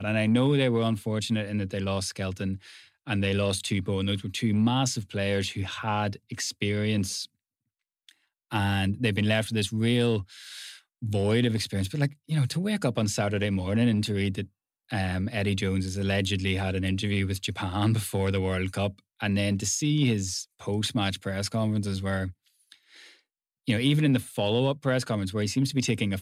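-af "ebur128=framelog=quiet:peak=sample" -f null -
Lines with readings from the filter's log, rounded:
Integrated loudness:
  I:         -27.3 LUFS
  Threshold: -37.8 LUFS
Loudness range:
  LRA:         2.9 LU
  Threshold: -48.1 LUFS
  LRA low:   -30.0 LUFS
  LRA high:  -27.0 LUFS
Sample peak:
  Peak:      -11.6 dBFS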